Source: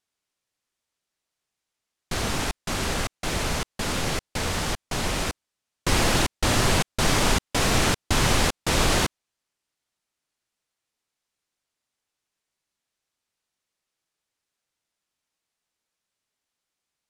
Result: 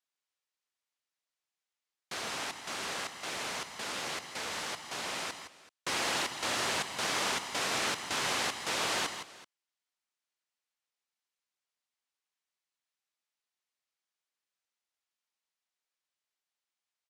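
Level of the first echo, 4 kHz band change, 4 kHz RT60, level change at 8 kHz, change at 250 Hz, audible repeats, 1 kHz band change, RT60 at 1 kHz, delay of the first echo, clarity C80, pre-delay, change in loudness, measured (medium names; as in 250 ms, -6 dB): -9.0 dB, -7.0 dB, no reverb, -8.5 dB, -16.5 dB, 2, -8.0 dB, no reverb, 163 ms, no reverb, no reverb, -9.0 dB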